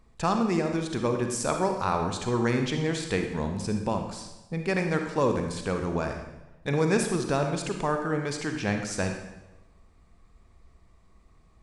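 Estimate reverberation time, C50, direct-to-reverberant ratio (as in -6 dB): 1.0 s, 5.5 dB, 4.5 dB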